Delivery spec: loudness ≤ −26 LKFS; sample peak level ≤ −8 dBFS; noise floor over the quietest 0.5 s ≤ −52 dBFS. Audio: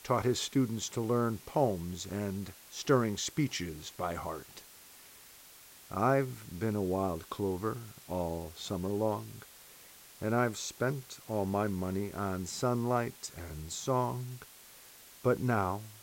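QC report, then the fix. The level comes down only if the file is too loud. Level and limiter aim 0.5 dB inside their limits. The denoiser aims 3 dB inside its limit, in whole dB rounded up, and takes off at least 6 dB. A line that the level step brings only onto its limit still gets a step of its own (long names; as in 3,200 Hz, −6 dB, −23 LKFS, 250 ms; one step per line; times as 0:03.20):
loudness −34.0 LKFS: in spec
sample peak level −15.0 dBFS: in spec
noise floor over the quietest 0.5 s −55 dBFS: in spec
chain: no processing needed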